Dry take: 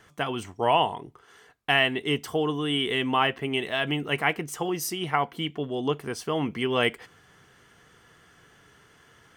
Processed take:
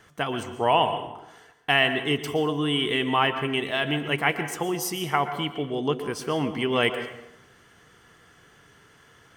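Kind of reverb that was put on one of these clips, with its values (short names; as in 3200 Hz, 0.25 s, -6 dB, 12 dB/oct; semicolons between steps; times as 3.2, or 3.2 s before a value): plate-style reverb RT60 0.86 s, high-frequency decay 0.7×, pre-delay 0.105 s, DRR 9.5 dB; gain +1 dB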